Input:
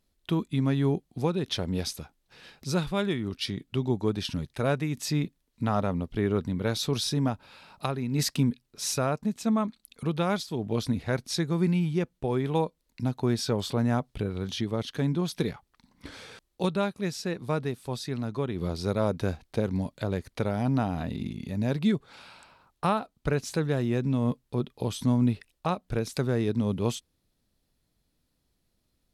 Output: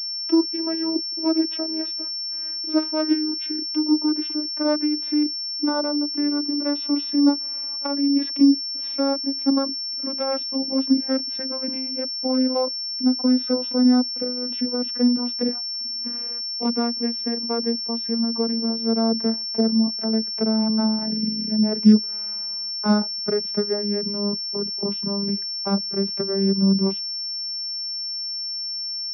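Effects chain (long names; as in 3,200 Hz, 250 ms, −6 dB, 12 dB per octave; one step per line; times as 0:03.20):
vocoder with a gliding carrier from E4, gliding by −10 semitones
switching amplifier with a slow clock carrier 5,400 Hz
level +6.5 dB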